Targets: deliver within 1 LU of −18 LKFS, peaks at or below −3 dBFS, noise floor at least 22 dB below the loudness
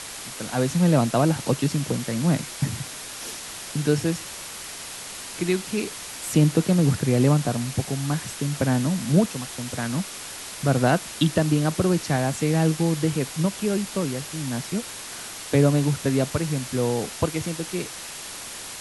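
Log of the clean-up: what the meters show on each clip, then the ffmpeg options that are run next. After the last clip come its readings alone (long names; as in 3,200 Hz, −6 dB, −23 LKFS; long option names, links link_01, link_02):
background noise floor −37 dBFS; target noise floor −47 dBFS; integrated loudness −24.5 LKFS; sample peak −7.0 dBFS; target loudness −18.0 LKFS
→ -af "afftdn=noise_reduction=10:noise_floor=-37"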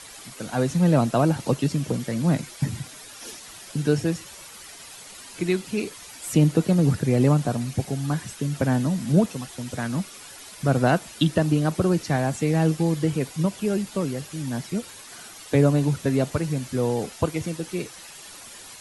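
background noise floor −43 dBFS; target noise floor −46 dBFS
→ -af "afftdn=noise_reduction=6:noise_floor=-43"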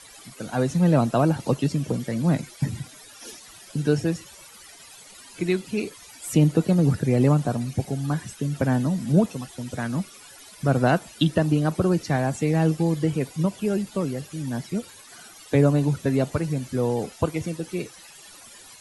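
background noise floor −47 dBFS; integrated loudness −24.0 LKFS; sample peak −7.0 dBFS; target loudness −18.0 LKFS
→ -af "volume=6dB,alimiter=limit=-3dB:level=0:latency=1"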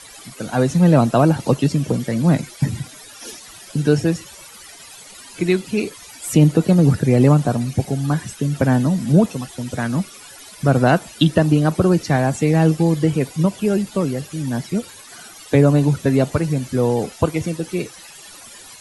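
integrated loudness −18.5 LKFS; sample peak −3.0 dBFS; background noise floor −41 dBFS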